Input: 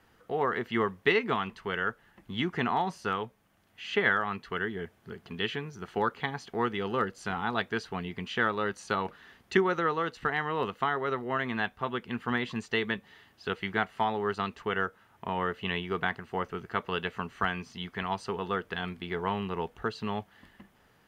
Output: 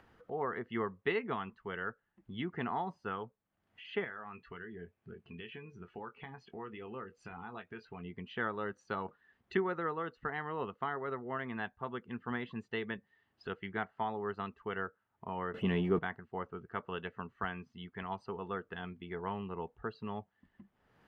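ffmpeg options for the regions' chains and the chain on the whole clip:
ffmpeg -i in.wav -filter_complex "[0:a]asettb=1/sr,asplit=3[link_01][link_02][link_03];[link_01]atrim=end=4.044[link_04];[link_02]atrim=start=4.04:end=8.03,asetpts=PTS-STARTPTS,afade=type=in:duration=0.004:curve=qsin,afade=type=out:start_time=3.986:duration=0.004:curve=qsin,equalizer=frequency=2500:width_type=o:width=0.31:gain=8.5,acompressor=threshold=-37dB:ratio=2.5:attack=3.2:release=140:knee=1:detection=peak,asplit=2[link_05][link_06];[link_06]adelay=23,volume=-8.5dB[link_07];[link_05][link_07]amix=inputs=2:normalize=0,atrim=end_sample=175959[link_08];[link_03]atrim=start=8.026[link_09];[link_04][link_08]acrossfade=duration=0.004:curve1=hsin:curve2=qsin[link_10];[link_10][link_09]acrossfade=duration=0.004:curve1=qsin:curve2=hsin,asettb=1/sr,asplit=3[link_11][link_12][link_13];[link_11]atrim=end=15.544[link_14];[link_12]atrim=start=15.54:end=15.99,asetpts=PTS-STARTPTS,afade=type=in:duration=0.004:curve=qsin,afade=type=out:start_time=0.446:duration=0.004:curve=qsin,aeval=exprs='val(0)+0.5*0.0158*sgn(val(0))':channel_layout=same,equalizer=frequency=240:width_type=o:width=2.5:gain=11[link_15];[link_13]atrim=start=15.986[link_16];[link_14][link_15]acrossfade=duration=0.004:curve1=hsin:curve2=qsin[link_17];[link_17][link_16]acrossfade=duration=0.004:curve1=qsin:curve2=hsin,afftdn=noise_reduction=14:noise_floor=-44,lowpass=frequency=2100:poles=1,acompressor=mode=upward:threshold=-40dB:ratio=2.5,volume=-7dB" out.wav

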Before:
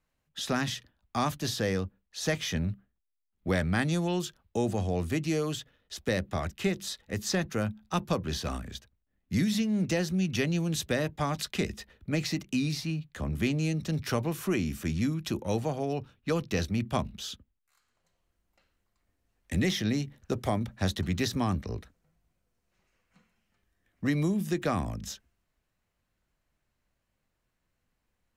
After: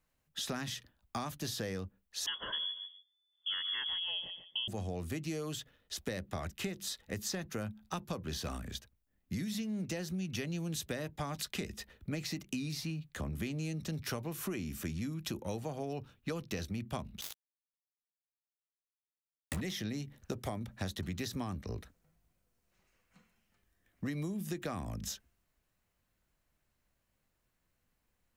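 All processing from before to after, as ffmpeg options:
ffmpeg -i in.wav -filter_complex "[0:a]asettb=1/sr,asplit=3[link_01][link_02][link_03];[link_01]atrim=end=2.264[link_04];[link_02]atrim=start=2.26:end=4.68,asetpts=PTS-STARTPTS,afade=type=in:duration=0.004:curve=qsin,afade=type=out:start_time=2.416:duration=0.004:curve=qsin,asuperstop=centerf=1100:order=20:qfactor=2.9,aecho=1:1:143|286:0.224|0.0403,atrim=end_sample=106722,lowpass=frequency=3000:width_type=q:width=0.5098,lowpass=frequency=3000:width_type=q:width=0.6013,lowpass=frequency=3000:width_type=q:width=0.9,lowpass=frequency=3000:width_type=q:width=2.563,afreqshift=-3500[link_05];[link_03]atrim=start=4.676[link_06];[link_04][link_05]acrossfade=duration=0.004:curve1=hsin:curve2=qsin[link_07];[link_07][link_06]acrossfade=duration=0.004:curve1=qsin:curve2=hsin,asettb=1/sr,asplit=3[link_08][link_09][link_10];[link_08]atrim=end=17.214[link_11];[link_09]atrim=start=17.21:end=19.61,asetpts=PTS-STARTPTS,afade=type=in:duration=0.004:curve=qsin,afade=type=out:start_time=2.396:duration=0.004:curve=qsin,asplit=2[link_12][link_13];[link_13]adelay=27,volume=-10dB[link_14];[link_12][link_14]amix=inputs=2:normalize=0,atrim=end_sample=105840,acrusher=bits=4:mix=0:aa=0.5[link_15];[link_10]atrim=start=19.606[link_16];[link_11][link_15]acrossfade=duration=0.004:curve1=hsin:curve2=qsin[link_17];[link_17][link_16]acrossfade=duration=0.004:curve1=qsin:curve2=hsin,highshelf=frequency=9800:gain=8,acompressor=threshold=-34dB:ratio=6,volume=-1dB" out.wav

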